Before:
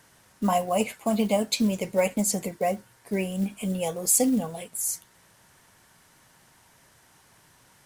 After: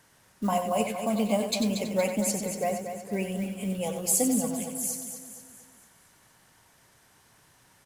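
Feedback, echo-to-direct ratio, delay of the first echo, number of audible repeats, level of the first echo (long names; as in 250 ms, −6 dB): repeats not evenly spaced, −4.5 dB, 93 ms, 9, −8.0 dB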